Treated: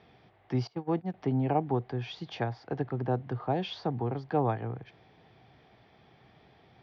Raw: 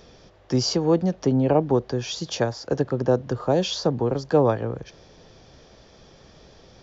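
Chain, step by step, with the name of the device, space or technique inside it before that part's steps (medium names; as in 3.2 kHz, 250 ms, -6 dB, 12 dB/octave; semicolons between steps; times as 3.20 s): 0.67–1.14 s: gate -20 dBFS, range -24 dB; guitar cabinet (cabinet simulation 91–3600 Hz, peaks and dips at 120 Hz +6 dB, 540 Hz -9 dB, 760 Hz +8 dB, 2.1 kHz +7 dB); trim -8.5 dB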